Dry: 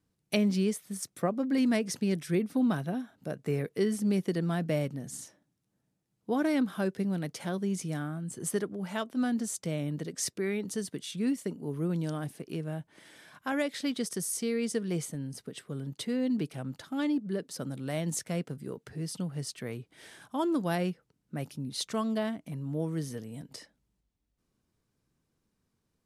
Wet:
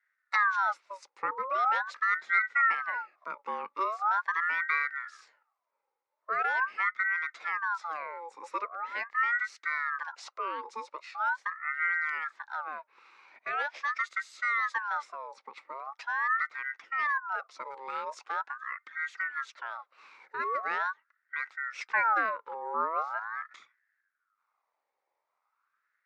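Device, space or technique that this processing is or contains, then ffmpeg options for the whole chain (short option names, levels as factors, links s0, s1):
voice changer toy: -filter_complex "[0:a]asettb=1/sr,asplit=3[s0][s1][s2];[s0]atrim=end=21.904[s3];[s1]atrim=start=21.9:end=23.43,asetpts=PTS-STARTPTS,afade=t=in:d=0.004:c=qsin,afade=t=out:st=1.526:d=0.004:c=qsin,equalizer=f=125:t=o:w=1:g=3,equalizer=f=250:t=o:w=1:g=4,equalizer=f=500:t=o:w=1:g=6,equalizer=f=1000:t=o:w=1:g=4,equalizer=f=2000:t=o:w=1:g=-3,equalizer=f=8000:t=o:w=1:g=-9[s4];[s2]atrim=start=23.426[s5];[s3][s4]acrossfade=d=0.004:c1=hsin:c2=qsin[s6];[s6][s5]acrossfade=d=0.004:c1=qsin:c2=hsin,aeval=exprs='val(0)*sin(2*PI*1200*n/s+1200*0.45/0.42*sin(2*PI*0.42*n/s))':c=same,highpass=590,equalizer=f=690:t=q:w=4:g=-4,equalizer=f=1300:t=q:w=4:g=5,equalizer=f=2100:t=q:w=4:g=7,equalizer=f=3100:t=q:w=4:g=-9,equalizer=f=4500:t=q:w=4:g=-5,lowpass=f=4700:w=0.5412,lowpass=f=4700:w=1.3066"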